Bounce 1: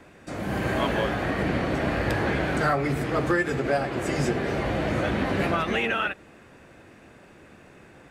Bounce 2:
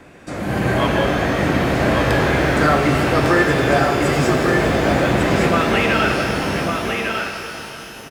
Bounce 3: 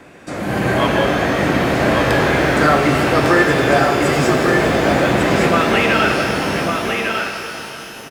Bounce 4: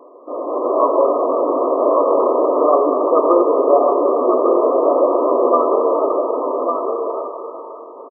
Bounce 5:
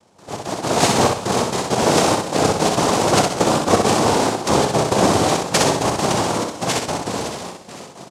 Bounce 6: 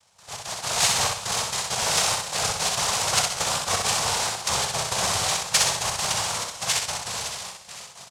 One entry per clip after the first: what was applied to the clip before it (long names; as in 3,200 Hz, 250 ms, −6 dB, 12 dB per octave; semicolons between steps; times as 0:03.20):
single-tap delay 1,152 ms −4.5 dB; reverb with rising layers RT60 3.3 s, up +12 semitones, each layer −8 dB, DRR 3.5 dB; level +6 dB
low-shelf EQ 92 Hz −9 dB; level +2.5 dB
brick-wall band-pass 240–1,300 Hz; comb filter 1.9 ms, depth 59%; level +1 dB
gate pattern "..xx.x.xxxxx" 168 BPM −12 dB; cochlear-implant simulation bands 2; on a send: repeating echo 63 ms, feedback 34%, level −4 dB; on the sum: level −2.5 dB
in parallel at −9 dB: soft clipping −18.5 dBFS, distortion −8 dB; on the sum: guitar amp tone stack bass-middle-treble 10-0-10